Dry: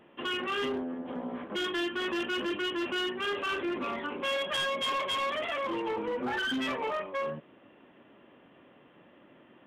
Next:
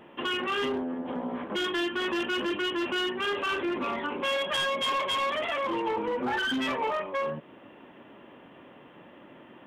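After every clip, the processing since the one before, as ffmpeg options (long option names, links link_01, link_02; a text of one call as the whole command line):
ffmpeg -i in.wav -filter_complex "[0:a]equalizer=frequency=910:width=5.4:gain=4,asplit=2[link_01][link_02];[link_02]acompressor=threshold=-41dB:ratio=6,volume=1dB[link_03];[link_01][link_03]amix=inputs=2:normalize=0" out.wav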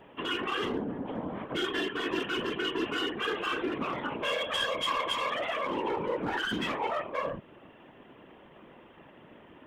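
ffmpeg -i in.wav -af "afftfilt=real='hypot(re,im)*cos(2*PI*random(0))':imag='hypot(re,im)*sin(2*PI*random(1))':win_size=512:overlap=0.75,volume=3.5dB" out.wav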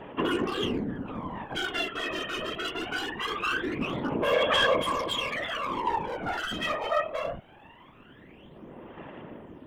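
ffmpeg -i in.wav -af "asoftclip=type=hard:threshold=-25.5dB,aphaser=in_gain=1:out_gain=1:delay=1.6:decay=0.71:speed=0.22:type=sinusoidal" out.wav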